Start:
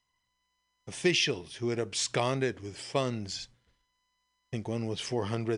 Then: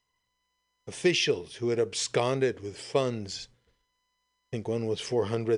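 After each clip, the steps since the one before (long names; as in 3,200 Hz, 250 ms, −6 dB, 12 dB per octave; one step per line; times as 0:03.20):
parametric band 450 Hz +8.5 dB 0.45 octaves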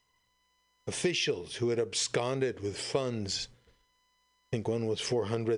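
downward compressor 4 to 1, threshold −33 dBFS, peak gain reduction 12.5 dB
level +5 dB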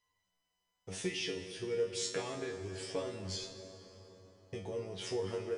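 tuned comb filter 94 Hz, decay 0.31 s, harmonics all, mix 100%
dense smooth reverb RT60 4.5 s, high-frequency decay 0.55×, DRR 6.5 dB
level +2 dB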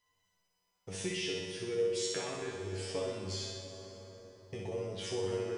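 in parallel at −1.5 dB: downward compressor, threshold −46 dBFS, peak gain reduction 16 dB
on the sum: flutter between parallel walls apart 10.6 metres, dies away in 1 s
level −3 dB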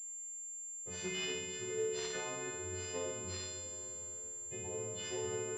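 every partial snapped to a pitch grid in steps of 3 semitones
switching amplifier with a slow clock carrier 7,300 Hz
level −4.5 dB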